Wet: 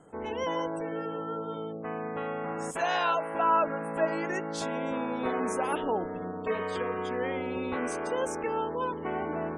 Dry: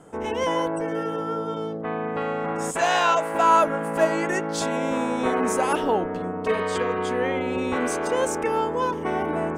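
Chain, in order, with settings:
dynamic equaliser 7,400 Hz, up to −4 dB, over −48 dBFS, Q 3.3
gate on every frequency bin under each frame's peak −30 dB strong
0:07.03–0:07.61: surface crackle 30 per second −50 dBFS
level −7 dB

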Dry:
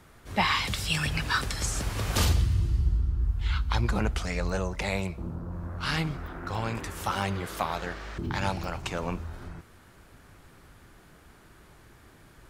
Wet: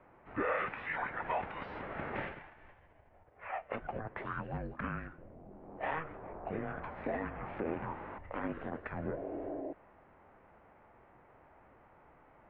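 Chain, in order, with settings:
brickwall limiter −21 dBFS, peak gain reduction 7.5 dB
sound drawn into the spectrogram noise, 0:09.05–0:09.73, 590–1,400 Hz −39 dBFS
formants moved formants −5 semitones
single-sideband voice off tune −320 Hz 380–2,500 Hz
level −1.5 dB

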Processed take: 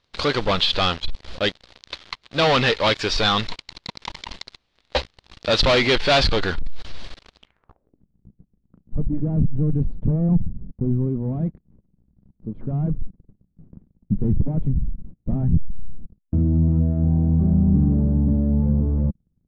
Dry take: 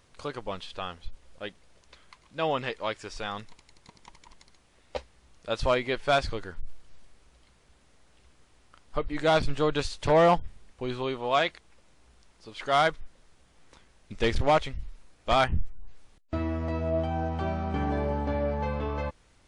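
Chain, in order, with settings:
leveller curve on the samples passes 5
low-pass filter sweep 4,100 Hz → 190 Hz, 0:07.38–0:08.05

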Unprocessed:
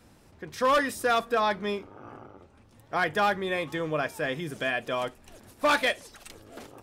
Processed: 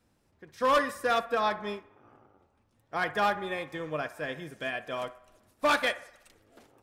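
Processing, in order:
delay with a band-pass on its return 61 ms, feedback 66%, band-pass 1,100 Hz, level −10 dB
expander for the loud parts 1.5 to 1, over −45 dBFS
level −1 dB

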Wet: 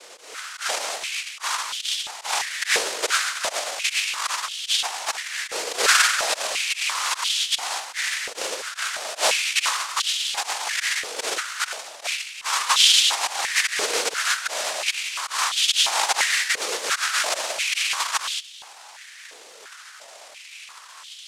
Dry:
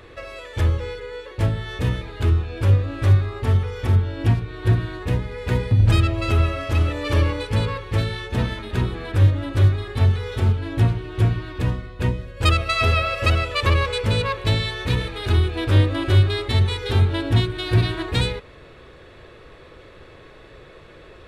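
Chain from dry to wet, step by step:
volume swells 218 ms
cochlear-implant simulation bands 1
high-pass on a step sequencer 2.9 Hz 470–3,200 Hz

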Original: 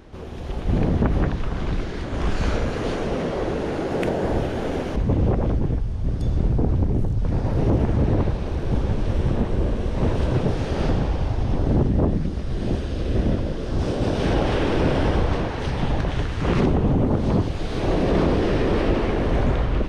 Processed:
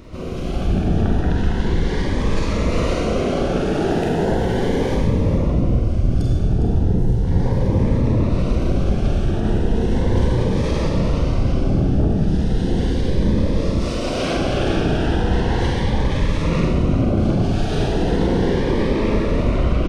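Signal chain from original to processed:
0:13.79–0:14.34: high-pass filter 1,200 Hz → 590 Hz 6 dB per octave
brickwall limiter −19.5 dBFS, peak gain reduction 11 dB
single-tap delay 408 ms −10 dB
four-comb reverb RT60 1.1 s, combs from 33 ms, DRR −1 dB
phaser whose notches keep moving one way rising 0.36 Hz
level +6 dB

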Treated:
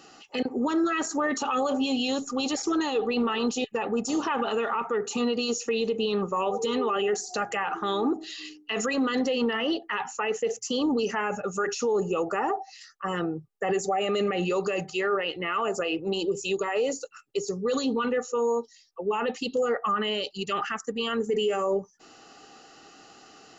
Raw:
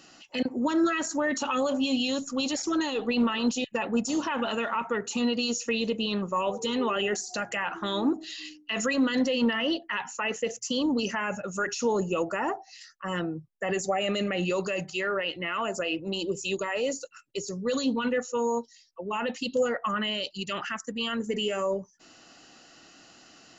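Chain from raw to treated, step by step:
hollow resonant body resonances 430/790/1,200 Hz, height 12 dB
brickwall limiter −18.5 dBFS, peak gain reduction 9 dB

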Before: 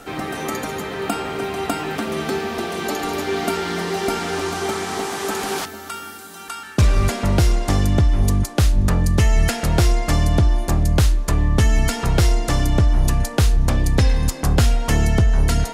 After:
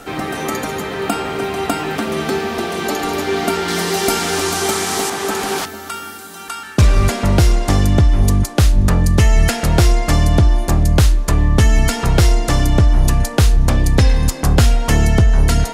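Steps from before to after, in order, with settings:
0:03.68–0:05.10: high-shelf EQ 4,400 Hz +11 dB
level +4 dB

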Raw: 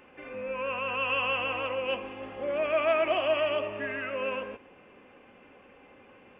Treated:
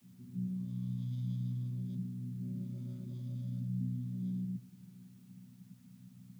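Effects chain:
channel vocoder with a chord as carrier bare fifth, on B2
inverse Chebyshev band-stop filter 440–2,900 Hz, stop band 50 dB
background noise white −80 dBFS
level +7 dB

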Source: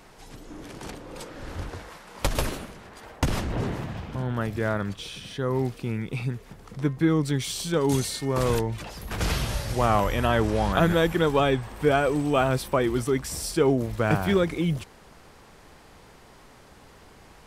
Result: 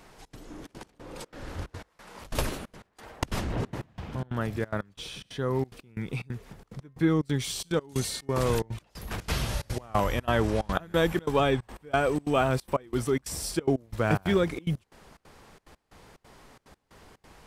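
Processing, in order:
gate pattern "xxx.xxxx.x.." 181 BPM −24 dB
level −2 dB

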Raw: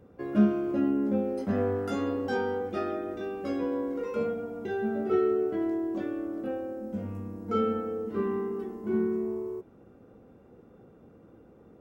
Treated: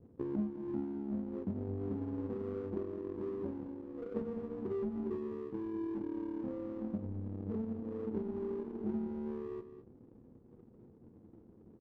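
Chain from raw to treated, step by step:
adaptive Wiener filter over 41 samples
inverse Chebyshev low-pass filter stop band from 2,000 Hz, stop band 70 dB
treble cut that deepens with the level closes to 310 Hz, closed at −28 dBFS
downward compressor 6 to 1, threshold −40 dBFS, peak gain reduction 19.5 dB
flanger 0.2 Hz, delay 7.7 ms, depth 2.8 ms, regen −58%
power curve on the samples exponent 1.4
double-tracking delay 23 ms −13 dB
single-tap delay 206 ms −12 dB
level +10.5 dB

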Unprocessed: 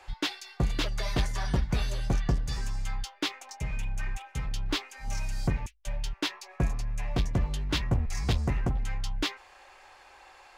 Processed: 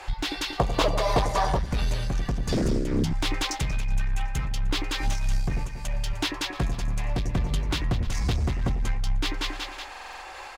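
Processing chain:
echo with a time of its own for lows and highs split 820 Hz, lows 92 ms, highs 186 ms, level −9 dB
downward compressor 10 to 1, threshold −32 dBFS, peak gain reduction 12 dB
0:02.52–0:03.13: low shelf with overshoot 220 Hz +13.5 dB, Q 3
single-tap delay 303 ms −19.5 dB
sine wavefolder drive 18 dB, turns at −10 dBFS
0:00.58–0:01.59: flat-topped bell 710 Hz +11.5 dB
buffer that repeats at 0:09.90, samples 2,048, times 6
amplitude modulation by smooth noise, depth 60%
level −8 dB

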